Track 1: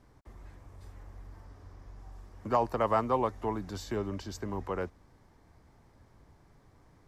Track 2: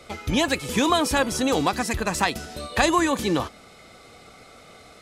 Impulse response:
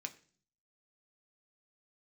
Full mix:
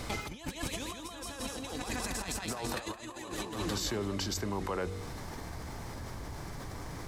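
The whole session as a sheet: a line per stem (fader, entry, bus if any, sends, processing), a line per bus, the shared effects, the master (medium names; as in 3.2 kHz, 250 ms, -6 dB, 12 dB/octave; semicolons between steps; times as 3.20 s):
-11.0 dB, 0.00 s, no send, no echo send, de-hum 47.56 Hz, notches 10; level flattener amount 70%
-4.5 dB, 0.00 s, no send, echo send -9.5 dB, auto duck -12 dB, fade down 0.85 s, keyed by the first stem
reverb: none
echo: feedback delay 168 ms, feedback 50%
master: treble shelf 2.6 kHz +7.5 dB; compressor with a negative ratio -36 dBFS, ratio -0.5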